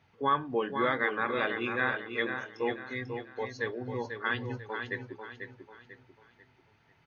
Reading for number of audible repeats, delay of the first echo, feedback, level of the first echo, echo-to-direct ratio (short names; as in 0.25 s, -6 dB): 4, 0.493 s, 37%, -7.0 dB, -6.5 dB